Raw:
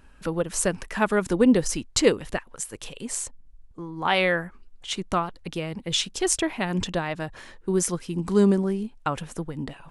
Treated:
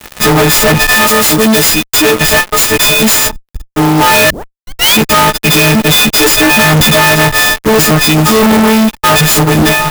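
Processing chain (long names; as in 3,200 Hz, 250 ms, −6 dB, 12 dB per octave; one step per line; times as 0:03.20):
every partial snapped to a pitch grid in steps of 6 semitones
0:00.95–0:02.21: first-order pre-emphasis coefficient 0.8
treble cut that deepens with the level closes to 2,000 Hz, closed at −12 dBFS
0:04.30: tape start 0.65 s
0:08.01–0:08.43: low-shelf EQ 170 Hz −12 dB
fuzz pedal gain 45 dB, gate −47 dBFS
converter with an unsteady clock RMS 0.03 ms
level +7.5 dB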